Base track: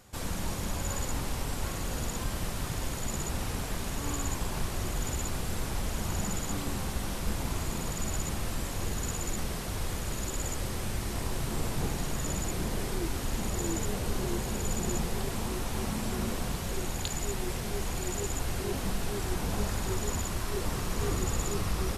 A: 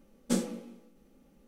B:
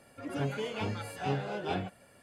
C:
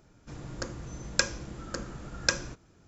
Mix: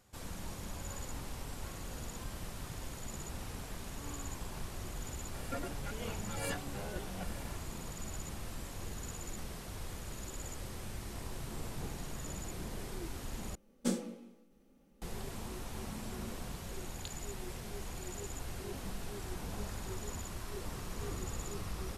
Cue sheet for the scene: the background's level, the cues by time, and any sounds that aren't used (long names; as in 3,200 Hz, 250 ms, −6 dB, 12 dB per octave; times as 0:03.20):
base track −10 dB
0:05.34: mix in B + compressor whose output falls as the input rises −45 dBFS
0:13.55: overwrite with A −4.5 dB
not used: C